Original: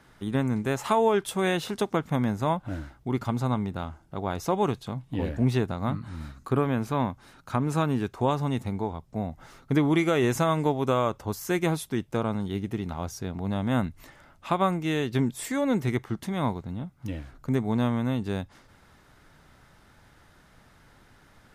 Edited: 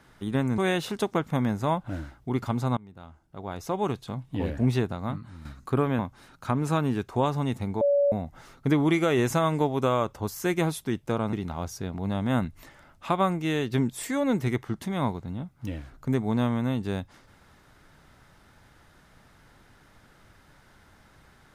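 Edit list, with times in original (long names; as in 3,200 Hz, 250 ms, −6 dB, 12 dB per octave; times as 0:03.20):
0:00.58–0:01.37: remove
0:03.56–0:05.03: fade in, from −22.5 dB
0:05.53–0:06.24: fade out, to −8.5 dB
0:06.78–0:07.04: remove
0:08.86–0:09.17: beep over 569 Hz −18.5 dBFS
0:12.38–0:12.74: remove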